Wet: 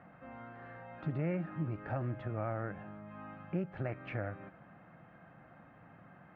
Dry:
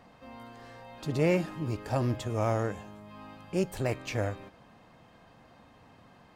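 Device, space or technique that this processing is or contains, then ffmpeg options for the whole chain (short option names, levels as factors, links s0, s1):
bass amplifier: -af "acompressor=threshold=0.0178:ratio=3,highpass=72,equalizer=f=81:t=q:w=4:g=-7,equalizer=f=170:t=q:w=4:g=5,equalizer=f=240:t=q:w=4:g=-5,equalizer=f=440:t=q:w=4:g=-8,equalizer=f=990:t=q:w=4:g=-8,equalizer=f=1400:t=q:w=4:g=5,lowpass=f=2100:w=0.5412,lowpass=f=2100:w=1.3066,volume=1.12"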